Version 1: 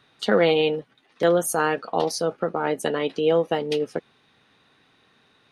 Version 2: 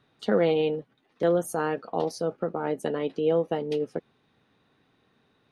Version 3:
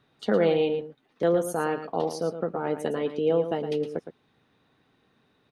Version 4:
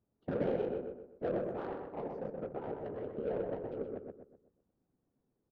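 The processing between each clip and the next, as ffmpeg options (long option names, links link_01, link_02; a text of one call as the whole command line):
ffmpeg -i in.wav -af "tiltshelf=frequency=920:gain=5,volume=-6.5dB" out.wav
ffmpeg -i in.wav -af "aecho=1:1:113:0.316" out.wav
ffmpeg -i in.wav -filter_complex "[0:a]afftfilt=real='hypot(re,im)*cos(2*PI*random(0))':imag='hypot(re,im)*sin(2*PI*random(1))':win_size=512:overlap=0.75,adynamicsmooth=sensitivity=1.5:basefreq=620,asplit=2[link_01][link_02];[link_02]adelay=126,lowpass=frequency=2300:poles=1,volume=-4dB,asplit=2[link_03][link_04];[link_04]adelay=126,lowpass=frequency=2300:poles=1,volume=0.4,asplit=2[link_05][link_06];[link_06]adelay=126,lowpass=frequency=2300:poles=1,volume=0.4,asplit=2[link_07][link_08];[link_08]adelay=126,lowpass=frequency=2300:poles=1,volume=0.4,asplit=2[link_09][link_10];[link_10]adelay=126,lowpass=frequency=2300:poles=1,volume=0.4[link_11];[link_01][link_03][link_05][link_07][link_09][link_11]amix=inputs=6:normalize=0,volume=-6.5dB" out.wav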